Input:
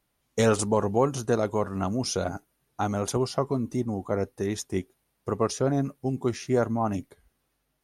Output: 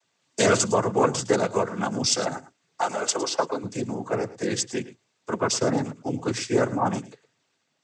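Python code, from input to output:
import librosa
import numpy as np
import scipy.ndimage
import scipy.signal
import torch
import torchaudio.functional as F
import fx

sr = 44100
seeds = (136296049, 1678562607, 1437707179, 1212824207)

p1 = fx.tilt_eq(x, sr, slope=2.0)
p2 = fx.noise_vocoder(p1, sr, seeds[0], bands=16)
p3 = fx.highpass(p2, sr, hz=370.0, slope=12, at=(2.81, 3.64))
p4 = p3 + fx.echo_single(p3, sr, ms=109, db=-16.5, dry=0)
y = p4 * librosa.db_to_amplitude(4.5)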